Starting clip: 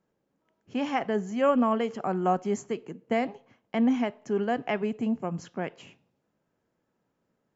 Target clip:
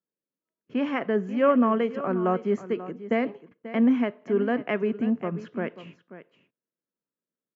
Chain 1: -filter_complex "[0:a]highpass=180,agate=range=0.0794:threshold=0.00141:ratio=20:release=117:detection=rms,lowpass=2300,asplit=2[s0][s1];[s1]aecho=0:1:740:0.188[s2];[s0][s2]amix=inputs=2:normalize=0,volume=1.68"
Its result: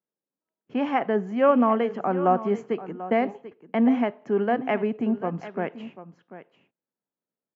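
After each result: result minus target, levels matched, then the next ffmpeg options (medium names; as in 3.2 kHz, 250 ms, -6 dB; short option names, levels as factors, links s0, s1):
echo 203 ms late; 1 kHz band +4.0 dB
-filter_complex "[0:a]highpass=180,agate=range=0.0794:threshold=0.00141:ratio=20:release=117:detection=rms,lowpass=2300,asplit=2[s0][s1];[s1]aecho=0:1:537:0.188[s2];[s0][s2]amix=inputs=2:normalize=0,volume=1.68"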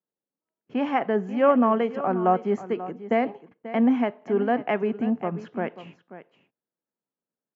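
1 kHz band +4.0 dB
-filter_complex "[0:a]highpass=180,agate=range=0.0794:threshold=0.00141:ratio=20:release=117:detection=rms,lowpass=2300,equalizer=f=790:t=o:w=0.37:g=-12.5,asplit=2[s0][s1];[s1]aecho=0:1:537:0.188[s2];[s0][s2]amix=inputs=2:normalize=0,volume=1.68"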